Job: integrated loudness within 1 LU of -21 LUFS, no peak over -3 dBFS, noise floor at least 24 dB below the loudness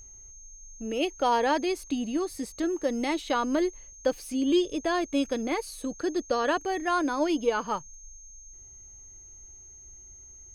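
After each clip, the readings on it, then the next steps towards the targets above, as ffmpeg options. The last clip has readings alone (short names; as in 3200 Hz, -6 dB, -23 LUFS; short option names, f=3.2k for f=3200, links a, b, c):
steady tone 6400 Hz; tone level -47 dBFS; loudness -28.5 LUFS; peak -13.5 dBFS; loudness target -21.0 LUFS
-> -af "bandreject=f=6.4k:w=30"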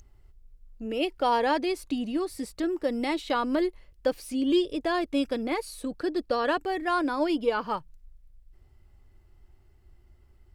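steady tone none; loudness -28.5 LUFS; peak -14.0 dBFS; loudness target -21.0 LUFS
-> -af "volume=7.5dB"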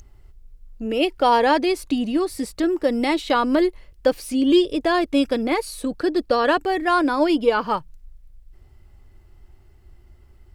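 loudness -21.0 LUFS; peak -6.5 dBFS; noise floor -51 dBFS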